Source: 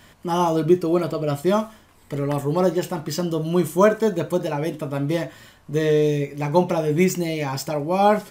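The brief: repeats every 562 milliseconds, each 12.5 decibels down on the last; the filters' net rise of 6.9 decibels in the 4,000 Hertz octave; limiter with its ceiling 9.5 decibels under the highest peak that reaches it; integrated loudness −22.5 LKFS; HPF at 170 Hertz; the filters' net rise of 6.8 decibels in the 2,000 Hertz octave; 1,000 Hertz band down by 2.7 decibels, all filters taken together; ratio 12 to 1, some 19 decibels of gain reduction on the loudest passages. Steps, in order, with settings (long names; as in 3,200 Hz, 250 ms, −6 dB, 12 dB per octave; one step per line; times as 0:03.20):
high-pass filter 170 Hz
parametric band 1,000 Hz −5.5 dB
parametric band 2,000 Hz +8.5 dB
parametric band 4,000 Hz +6.5 dB
downward compressor 12 to 1, threshold −31 dBFS
brickwall limiter −29 dBFS
repeating echo 562 ms, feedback 24%, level −12.5 dB
level +16 dB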